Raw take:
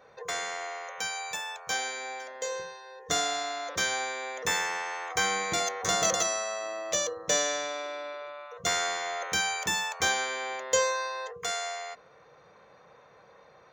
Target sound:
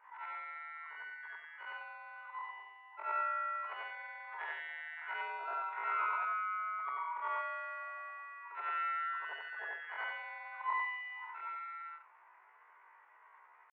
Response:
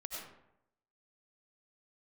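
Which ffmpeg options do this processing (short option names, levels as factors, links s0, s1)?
-af "afftfilt=real='re':imag='-im':win_size=8192:overlap=0.75,asetrate=80880,aresample=44100,atempo=0.545254,highpass=f=460:t=q:w=0.5412,highpass=f=460:t=q:w=1.307,lowpass=f=2000:t=q:w=0.5176,lowpass=f=2000:t=q:w=0.7071,lowpass=f=2000:t=q:w=1.932,afreqshift=71"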